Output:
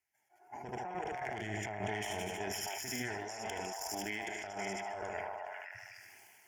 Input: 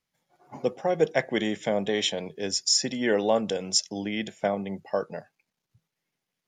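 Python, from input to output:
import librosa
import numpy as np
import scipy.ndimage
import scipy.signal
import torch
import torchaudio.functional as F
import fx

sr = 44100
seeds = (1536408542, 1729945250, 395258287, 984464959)

y = fx.cheby_harmonics(x, sr, harmonics=(2, 3, 4, 8), levels_db=(-11, -13, -19, -30), full_scale_db=-8.0)
y = scipy.signal.sosfilt(scipy.signal.butter(2, 98.0, 'highpass', fs=sr, output='sos'), y)
y = fx.peak_eq(y, sr, hz=260.0, db=-15.0, octaves=0.94)
y = fx.fixed_phaser(y, sr, hz=780.0, stages=8)
y = fx.echo_feedback(y, sr, ms=76, feedback_pct=54, wet_db=-11.5)
y = fx.over_compress(y, sr, threshold_db=-48.0, ratio=-1.0)
y = fx.peak_eq(y, sr, hz=130.0, db=10.5, octaves=1.5, at=(0.61, 3.18))
y = fx.echo_stepped(y, sr, ms=260, hz=900.0, octaves=1.4, feedback_pct=70, wet_db=-1)
y = fx.sustainer(y, sr, db_per_s=20.0)
y = y * 10.0 ** (3.0 / 20.0)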